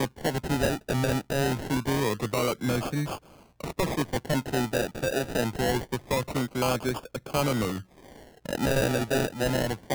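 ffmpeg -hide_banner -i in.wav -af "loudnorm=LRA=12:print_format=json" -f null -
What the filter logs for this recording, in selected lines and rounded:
"input_i" : "-28.2",
"input_tp" : "-13.8",
"input_lra" : "1.5",
"input_thresh" : "-38.6",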